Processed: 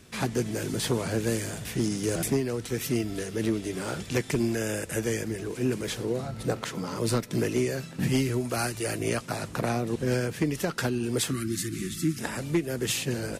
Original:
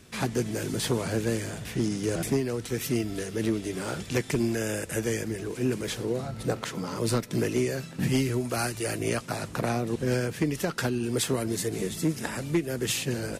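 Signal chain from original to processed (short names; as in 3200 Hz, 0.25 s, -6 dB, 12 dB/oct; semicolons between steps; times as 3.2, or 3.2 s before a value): 1.24–2.28 high shelf 6300 Hz +6.5 dB; 11.3–12.18 spectral gain 380–1100 Hz -25 dB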